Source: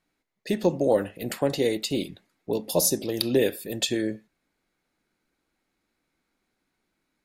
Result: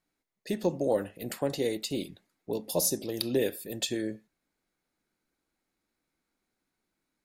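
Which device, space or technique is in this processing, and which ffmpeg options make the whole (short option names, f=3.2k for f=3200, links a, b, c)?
exciter from parts: -filter_complex "[0:a]asplit=2[a][b];[b]highpass=f=3.4k:p=1,asoftclip=type=tanh:threshold=-30dB,highpass=2.6k,volume=-6dB[c];[a][c]amix=inputs=2:normalize=0,volume=-5.5dB"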